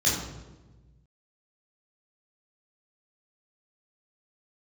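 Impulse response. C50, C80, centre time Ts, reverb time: 2.5 dB, 5.0 dB, 58 ms, 1.2 s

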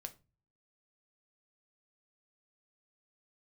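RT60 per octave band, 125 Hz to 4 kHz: 0.65, 0.50, 0.30, 0.25, 0.25, 0.20 s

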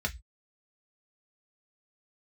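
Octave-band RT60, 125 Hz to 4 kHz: 0.35, 0.15, 0.10, 0.15, 0.20, 0.20 s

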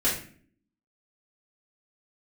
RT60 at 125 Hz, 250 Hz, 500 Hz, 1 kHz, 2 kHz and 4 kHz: 0.65, 0.85, 0.55, 0.40, 0.50, 0.35 s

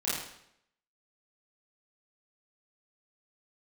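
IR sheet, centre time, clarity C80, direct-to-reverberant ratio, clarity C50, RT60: 65 ms, 3.5 dB, -10.0 dB, -0.5 dB, 0.75 s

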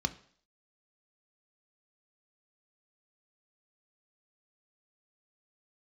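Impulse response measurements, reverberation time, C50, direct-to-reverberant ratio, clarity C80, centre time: 0.55 s, 17.0 dB, 9.0 dB, 21.0 dB, 5 ms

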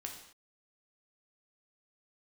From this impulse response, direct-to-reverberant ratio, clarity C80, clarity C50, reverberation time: 1.0 dB, 8.5 dB, 6.0 dB, not exponential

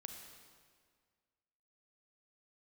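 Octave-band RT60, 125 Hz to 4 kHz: 1.9, 1.9, 1.9, 1.8, 1.7, 1.5 s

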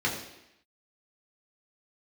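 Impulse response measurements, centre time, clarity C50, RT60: 33 ms, 6.0 dB, 0.85 s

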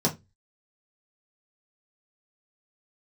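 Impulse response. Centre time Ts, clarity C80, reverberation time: 12 ms, 25.5 dB, 0.20 s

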